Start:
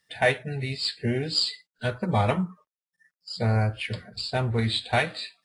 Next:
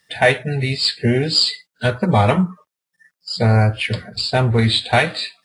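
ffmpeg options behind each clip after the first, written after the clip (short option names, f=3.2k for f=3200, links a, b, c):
-filter_complex "[0:a]highpass=49,asplit=2[a][b];[b]alimiter=limit=-17.5dB:level=0:latency=1,volume=-2dB[c];[a][c]amix=inputs=2:normalize=0,volume=5dB"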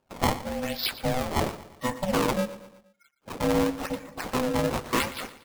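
-af "acrusher=samples=23:mix=1:aa=0.000001:lfo=1:lforange=36.8:lforate=0.93,aeval=exprs='val(0)*sin(2*PI*380*n/s)':c=same,aecho=1:1:118|236|354|472:0.158|0.0777|0.0381|0.0186,volume=-7.5dB"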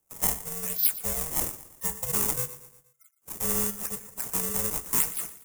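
-filter_complex "[0:a]afreqshift=-67,acrossover=split=600|3600[a][b][c];[a]acrusher=samples=28:mix=1:aa=0.000001[d];[d][b][c]amix=inputs=3:normalize=0,aexciter=amount=12.3:drive=3.8:freq=6.2k,volume=-9.5dB"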